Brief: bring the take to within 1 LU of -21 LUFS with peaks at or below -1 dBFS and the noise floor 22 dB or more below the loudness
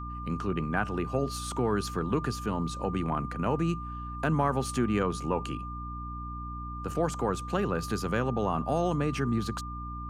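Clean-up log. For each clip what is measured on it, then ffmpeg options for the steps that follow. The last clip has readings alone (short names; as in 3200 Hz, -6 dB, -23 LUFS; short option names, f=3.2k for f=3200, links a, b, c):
hum 60 Hz; harmonics up to 300 Hz; hum level -37 dBFS; steady tone 1200 Hz; tone level -39 dBFS; loudness -31.0 LUFS; peak -13.0 dBFS; loudness target -21.0 LUFS
-> -af "bandreject=f=60:t=h:w=6,bandreject=f=120:t=h:w=6,bandreject=f=180:t=h:w=6,bandreject=f=240:t=h:w=6,bandreject=f=300:t=h:w=6"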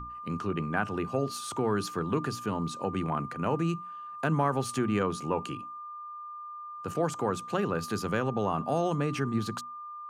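hum none; steady tone 1200 Hz; tone level -39 dBFS
-> -af "bandreject=f=1.2k:w=30"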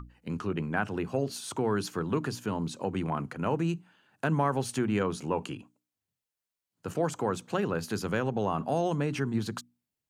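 steady tone none; loudness -31.5 LUFS; peak -14.0 dBFS; loudness target -21.0 LUFS
-> -af "volume=10.5dB"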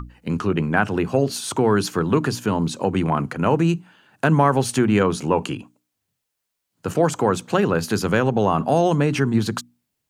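loudness -21.0 LUFS; peak -3.5 dBFS; noise floor -79 dBFS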